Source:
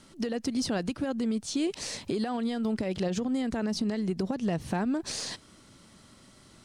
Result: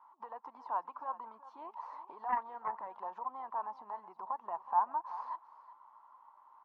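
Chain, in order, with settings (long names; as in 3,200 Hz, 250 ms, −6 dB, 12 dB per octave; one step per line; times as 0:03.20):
spectral magnitudes quantised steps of 15 dB
flat-topped band-pass 970 Hz, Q 4.7
on a send: single-tap delay 374 ms −16 dB
0:02.29–0:02.87: on the sum: highs frequency-modulated by the lows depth 0.15 ms
level +13.5 dB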